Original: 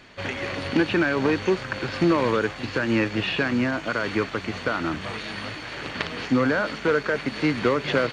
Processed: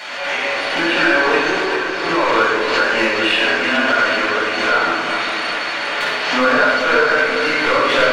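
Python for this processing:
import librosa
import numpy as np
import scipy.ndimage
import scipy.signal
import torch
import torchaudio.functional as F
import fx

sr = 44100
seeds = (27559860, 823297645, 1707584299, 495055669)

p1 = scipy.signal.sosfilt(scipy.signal.butter(2, 630.0, 'highpass', fs=sr, output='sos'), x)
p2 = fx.level_steps(p1, sr, step_db=14, at=(1.63, 2.24))
p3 = 10.0 ** (-19.5 / 20.0) * np.tanh(p2 / 10.0 ** (-19.5 / 20.0))
p4 = p3 + fx.echo_feedback(p3, sr, ms=400, feedback_pct=58, wet_db=-9.0, dry=0)
p5 = fx.room_shoebox(p4, sr, seeds[0], volume_m3=670.0, walls='mixed', distance_m=7.6)
p6 = fx.pre_swell(p5, sr, db_per_s=39.0)
y = p6 * librosa.db_to_amplitude(-1.5)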